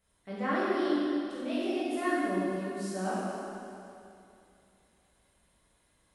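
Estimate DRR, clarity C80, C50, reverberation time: -10.0 dB, -3.0 dB, -4.5 dB, 2.7 s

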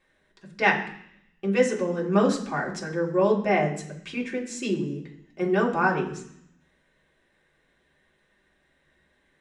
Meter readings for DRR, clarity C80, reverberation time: -3.5 dB, 12.5 dB, 0.65 s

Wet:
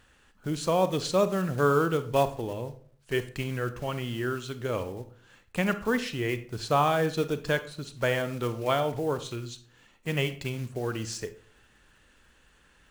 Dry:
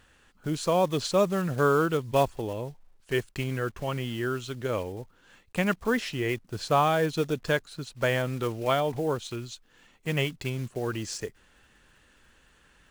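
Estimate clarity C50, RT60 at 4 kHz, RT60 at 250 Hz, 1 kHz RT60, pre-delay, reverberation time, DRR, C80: 13.5 dB, 0.30 s, 0.65 s, 0.45 s, 32 ms, 0.50 s, 11.0 dB, 18.0 dB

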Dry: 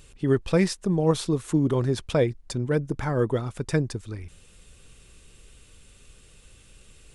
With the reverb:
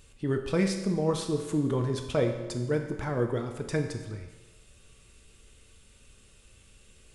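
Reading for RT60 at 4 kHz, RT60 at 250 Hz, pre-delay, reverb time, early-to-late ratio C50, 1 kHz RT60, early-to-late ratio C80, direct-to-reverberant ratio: 1.1 s, 1.2 s, 5 ms, 1.2 s, 7.0 dB, 1.2 s, 8.5 dB, 3.5 dB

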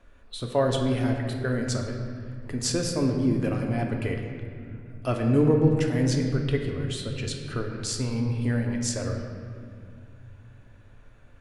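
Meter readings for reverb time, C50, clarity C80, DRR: 2.2 s, 4.0 dB, 5.5 dB, 1.5 dB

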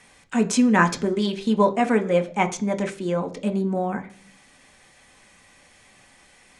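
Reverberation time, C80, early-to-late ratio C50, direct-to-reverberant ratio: 0.45 s, 20.0 dB, 16.5 dB, 4.5 dB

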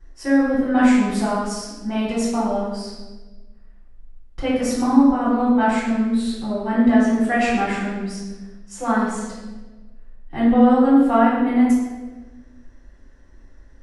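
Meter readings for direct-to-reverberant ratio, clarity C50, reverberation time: -10.5 dB, 0.5 dB, 1.2 s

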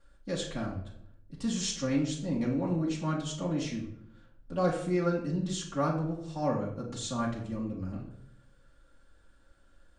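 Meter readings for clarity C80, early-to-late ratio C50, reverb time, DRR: 10.0 dB, 6.5 dB, 0.75 s, -5.5 dB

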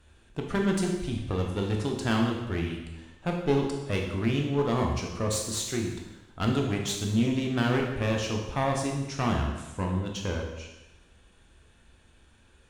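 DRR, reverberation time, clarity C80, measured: 0.5 dB, 1.0 s, 6.5 dB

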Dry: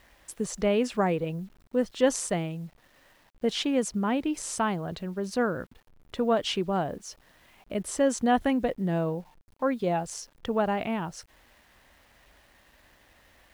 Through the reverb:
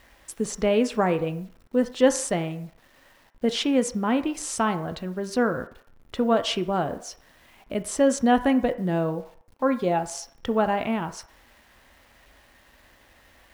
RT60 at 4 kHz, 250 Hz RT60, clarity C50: 0.60 s, 0.40 s, 14.0 dB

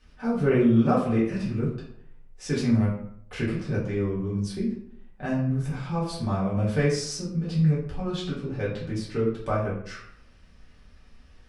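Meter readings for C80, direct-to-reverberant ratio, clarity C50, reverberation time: 8.0 dB, -8.0 dB, 4.0 dB, 0.65 s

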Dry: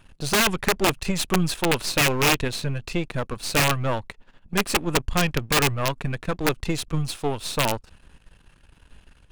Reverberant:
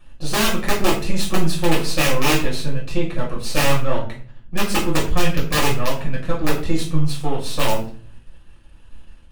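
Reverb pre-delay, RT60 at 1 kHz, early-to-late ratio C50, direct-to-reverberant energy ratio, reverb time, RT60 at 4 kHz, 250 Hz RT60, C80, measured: 5 ms, 0.40 s, 7.5 dB, -5.0 dB, 0.45 s, 0.30 s, 0.65 s, 12.0 dB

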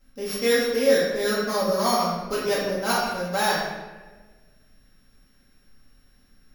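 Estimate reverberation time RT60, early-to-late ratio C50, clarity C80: 1.3 s, 0.0 dB, 2.5 dB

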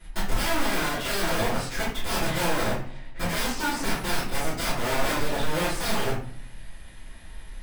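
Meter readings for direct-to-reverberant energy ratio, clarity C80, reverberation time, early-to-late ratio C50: -15.0 dB, 8.0 dB, 0.55 s, 3.0 dB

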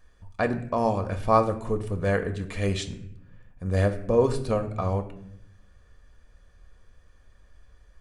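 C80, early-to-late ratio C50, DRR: 15.0 dB, 12.5 dB, 6.5 dB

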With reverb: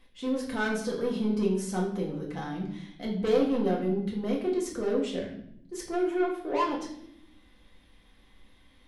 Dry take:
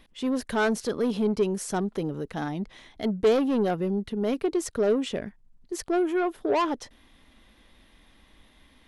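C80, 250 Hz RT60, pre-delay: 9.5 dB, 1.3 s, 4 ms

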